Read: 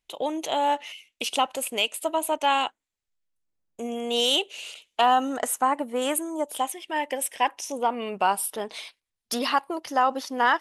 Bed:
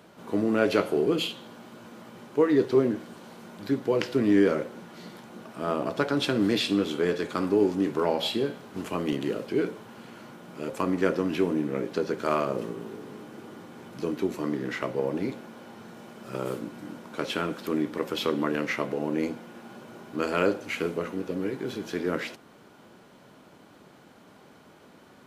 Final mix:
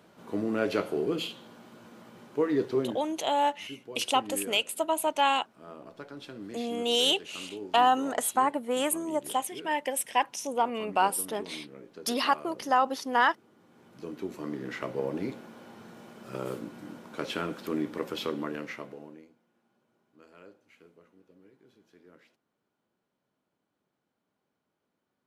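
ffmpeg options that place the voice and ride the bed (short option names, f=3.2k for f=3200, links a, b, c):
-filter_complex "[0:a]adelay=2750,volume=-2dB[a];[1:a]volume=9.5dB,afade=t=out:st=2.64:d=0.75:silence=0.223872,afade=t=in:st=13.56:d=1.45:silence=0.188365,afade=t=out:st=18:d=1.25:silence=0.0562341[b];[a][b]amix=inputs=2:normalize=0"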